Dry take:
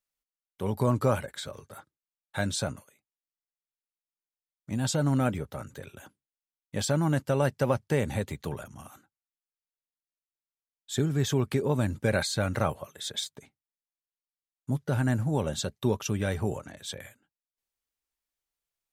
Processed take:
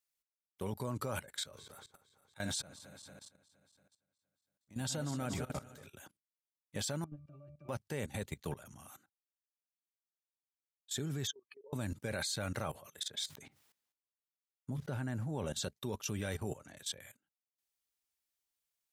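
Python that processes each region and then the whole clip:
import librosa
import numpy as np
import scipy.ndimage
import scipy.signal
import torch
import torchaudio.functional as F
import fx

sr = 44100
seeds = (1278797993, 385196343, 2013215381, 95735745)

y = fx.chain(x, sr, fx.reverse_delay_fb(ms=116, feedback_pct=70, wet_db=-11.0),
    fx.auto_swell(attack_ms=154.0), at=(1.4, 5.87))
y = fx.chain(y, sr, fx.lowpass(hz=8200.0, slope=12),
    fx.over_compress(threshold_db=-28.0, ratio=-0.5),
    fx.octave_resonator(note='D', decay_s=0.23), at=(7.04, 7.69))
y = fx.chain(y, sr, fx.spec_expand(power=3.0),
    fx.highpass(hz=750.0, slope=24), at=(11.27, 11.73))
y = fx.chain(y, sr, fx.high_shelf(hz=4000.0, db=-9.0),
    fx.sustainer(db_per_s=87.0), at=(13.03, 15.46))
y = fx.highpass(y, sr, hz=49.0, slope=6)
y = fx.high_shelf(y, sr, hz=2400.0, db=7.0)
y = fx.level_steps(y, sr, step_db=17)
y = F.gain(torch.from_numpy(y), -3.5).numpy()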